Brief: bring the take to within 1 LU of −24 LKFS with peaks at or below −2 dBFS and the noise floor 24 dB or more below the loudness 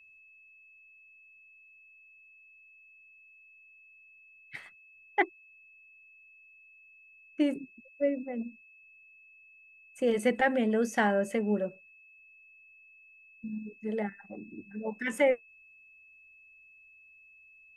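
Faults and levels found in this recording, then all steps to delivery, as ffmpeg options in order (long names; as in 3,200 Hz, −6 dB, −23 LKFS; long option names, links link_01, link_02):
interfering tone 2,600 Hz; level of the tone −55 dBFS; integrated loudness −31.0 LKFS; sample peak −12.5 dBFS; target loudness −24.0 LKFS
→ -af "bandreject=frequency=2600:width=30"
-af "volume=7dB"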